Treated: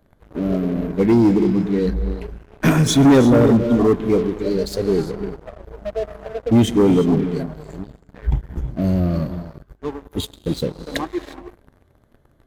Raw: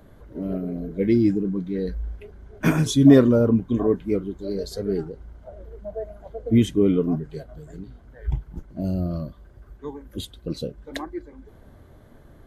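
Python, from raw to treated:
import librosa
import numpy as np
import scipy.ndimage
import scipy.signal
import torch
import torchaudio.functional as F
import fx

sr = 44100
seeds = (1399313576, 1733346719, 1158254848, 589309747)

y = fx.rev_gated(x, sr, seeds[0], gate_ms=380, shape='rising', drr_db=10.0)
y = fx.leveller(y, sr, passes=3)
y = y * 10.0 ** (-4.0 / 20.0)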